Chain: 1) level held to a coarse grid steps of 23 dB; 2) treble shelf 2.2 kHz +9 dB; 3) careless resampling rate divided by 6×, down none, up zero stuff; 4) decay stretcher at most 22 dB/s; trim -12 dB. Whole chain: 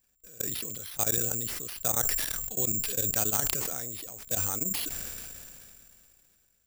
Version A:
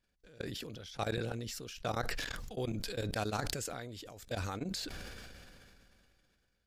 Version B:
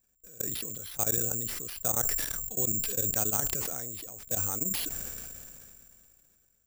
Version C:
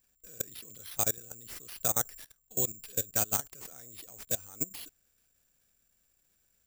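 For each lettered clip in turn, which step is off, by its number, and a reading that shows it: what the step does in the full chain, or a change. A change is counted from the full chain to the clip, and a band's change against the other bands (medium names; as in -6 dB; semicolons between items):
3, 8 kHz band -18.0 dB; 2, 4 kHz band -2.5 dB; 4, momentary loudness spread change +6 LU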